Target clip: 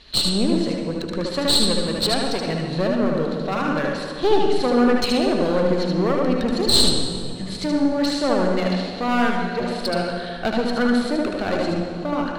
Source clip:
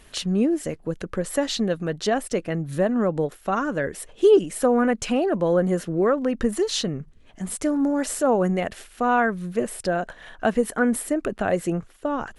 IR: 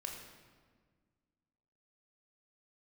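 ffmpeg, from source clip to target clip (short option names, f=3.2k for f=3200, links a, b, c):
-filter_complex "[0:a]lowpass=f=4.2k:t=q:w=11,aeval=exprs='clip(val(0),-1,0.0668)':c=same,asplit=2[a][b];[1:a]atrim=start_sample=2205,asetrate=22932,aresample=44100,adelay=75[c];[b][c]afir=irnorm=-1:irlink=0,volume=-2.5dB[d];[a][d]amix=inputs=2:normalize=0,volume=-1dB"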